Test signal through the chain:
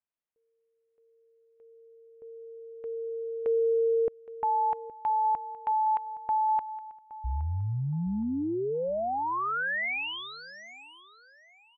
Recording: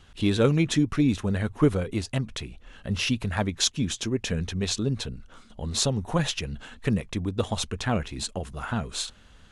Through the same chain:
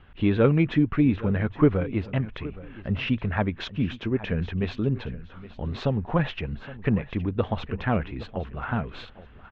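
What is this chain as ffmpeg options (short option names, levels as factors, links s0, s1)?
-filter_complex "[0:a]lowpass=f=2600:w=0.5412,lowpass=f=2600:w=1.3066,asplit=2[s0][s1];[s1]aecho=0:1:818|1636|2454:0.141|0.0396|0.0111[s2];[s0][s2]amix=inputs=2:normalize=0,volume=1.19"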